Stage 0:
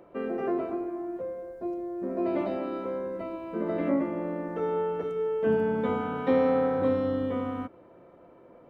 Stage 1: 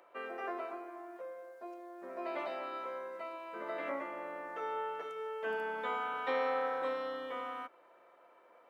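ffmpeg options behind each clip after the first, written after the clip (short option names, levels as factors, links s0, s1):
-af "highpass=980,volume=1.12"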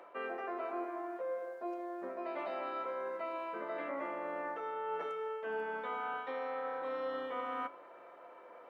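-af "highshelf=f=3600:g=-10.5,areverse,acompressor=threshold=0.00631:ratio=12,areverse,flanger=delay=9.9:depth=5:regen=84:speed=0.24:shape=sinusoidal,volume=4.47"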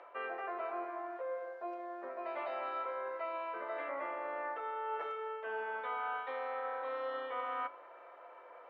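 -af "highpass=520,lowpass=3700,volume=1.19"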